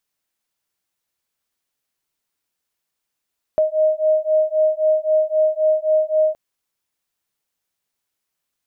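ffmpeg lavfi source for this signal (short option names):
-f lavfi -i "aevalsrc='0.133*(sin(2*PI*621*t)+sin(2*PI*624.8*t))':d=2.77:s=44100"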